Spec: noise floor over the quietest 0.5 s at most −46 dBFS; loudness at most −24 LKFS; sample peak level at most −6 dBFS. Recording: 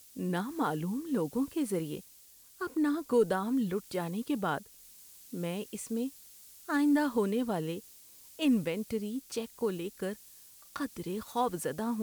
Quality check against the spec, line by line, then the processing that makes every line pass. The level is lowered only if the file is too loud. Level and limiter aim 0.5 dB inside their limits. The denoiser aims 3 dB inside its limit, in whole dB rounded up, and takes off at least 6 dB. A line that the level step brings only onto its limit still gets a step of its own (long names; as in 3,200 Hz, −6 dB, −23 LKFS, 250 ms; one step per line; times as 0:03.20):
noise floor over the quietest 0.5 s −57 dBFS: in spec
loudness −33.0 LKFS: in spec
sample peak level −16.5 dBFS: in spec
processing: no processing needed